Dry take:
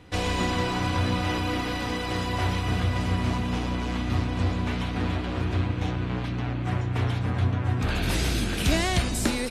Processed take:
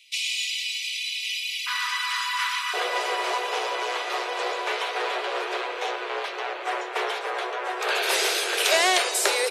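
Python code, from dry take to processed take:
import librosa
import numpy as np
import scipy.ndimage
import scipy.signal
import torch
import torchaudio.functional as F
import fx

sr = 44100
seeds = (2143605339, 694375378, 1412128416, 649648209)

y = fx.steep_highpass(x, sr, hz=fx.steps((0.0, 2200.0), (1.66, 990.0), (2.73, 380.0)), slope=96)
y = y * 10.0 ** (7.5 / 20.0)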